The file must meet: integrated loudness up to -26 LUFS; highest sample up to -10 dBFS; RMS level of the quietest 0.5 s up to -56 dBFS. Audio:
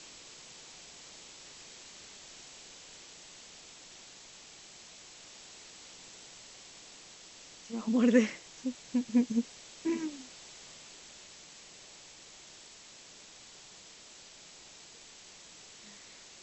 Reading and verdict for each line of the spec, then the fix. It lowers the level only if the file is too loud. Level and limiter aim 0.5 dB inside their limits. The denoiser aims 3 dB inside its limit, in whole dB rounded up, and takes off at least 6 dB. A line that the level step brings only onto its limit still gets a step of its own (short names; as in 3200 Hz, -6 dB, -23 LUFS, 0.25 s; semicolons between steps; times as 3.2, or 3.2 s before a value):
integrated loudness -34.5 LUFS: OK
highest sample -12.0 dBFS: OK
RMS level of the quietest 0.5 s -53 dBFS: fail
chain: denoiser 6 dB, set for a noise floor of -53 dBFS